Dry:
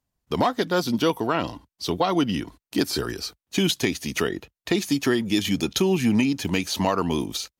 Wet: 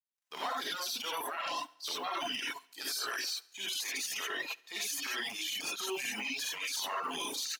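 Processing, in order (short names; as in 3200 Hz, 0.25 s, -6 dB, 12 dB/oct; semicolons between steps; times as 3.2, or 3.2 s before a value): G.711 law mismatch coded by A; transient shaper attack -10 dB, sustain +9 dB; HPF 1000 Hz 12 dB/oct; reverse; compressor 6:1, threshold -32 dBFS, peak gain reduction 13 dB; reverse; non-linear reverb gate 0.11 s rising, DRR -5.5 dB; limiter -25.5 dBFS, peak gain reduction 10 dB; feedback echo 70 ms, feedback 55%, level -15 dB; reverb removal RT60 1.2 s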